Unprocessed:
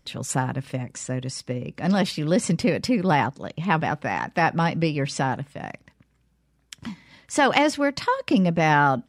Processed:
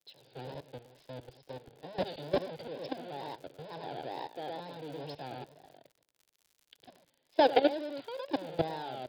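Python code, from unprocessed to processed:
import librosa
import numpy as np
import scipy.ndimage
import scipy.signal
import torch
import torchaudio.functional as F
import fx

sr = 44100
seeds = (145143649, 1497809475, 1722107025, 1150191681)

y = fx.halfwave_hold(x, sr)
y = scipy.signal.sosfilt(scipy.signal.butter(4, 160.0, 'highpass', fs=sr, output='sos'), y)
y = fx.high_shelf(y, sr, hz=2700.0, db=-12.0)
y = y + 10.0 ** (-6.0 / 20.0) * np.pad(y, (int(107 * sr / 1000.0), 0))[:len(y)]
y = fx.level_steps(y, sr, step_db=14)
y = scipy.signal.sosfilt(scipy.signal.cheby1(6, 6, 5000.0, 'lowpass', fs=sr, output='sos'), y)
y = fx.peak_eq(y, sr, hz=2000.0, db=-6.5, octaves=0.35)
y = fx.fixed_phaser(y, sr, hz=500.0, stages=4)
y = fx.dmg_crackle(y, sr, seeds[0], per_s=100.0, level_db=-42.0)
y = fx.vibrato(y, sr, rate_hz=2.2, depth_cents=89.0)
y = fx.band_widen(y, sr, depth_pct=40)
y = y * 10.0 ** (-3.0 / 20.0)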